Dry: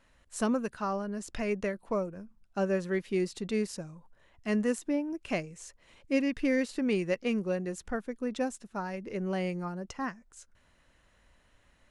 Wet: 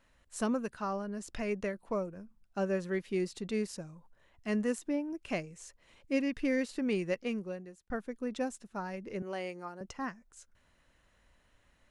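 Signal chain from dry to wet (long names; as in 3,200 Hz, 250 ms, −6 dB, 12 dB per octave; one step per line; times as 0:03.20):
0:07.15–0:07.90: fade out
0:09.22–0:09.81: high-pass filter 360 Hz 12 dB per octave
level −3 dB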